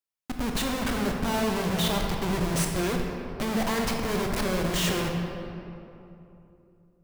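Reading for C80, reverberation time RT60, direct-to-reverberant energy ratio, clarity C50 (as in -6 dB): 3.5 dB, 2.9 s, 1.0 dB, 2.5 dB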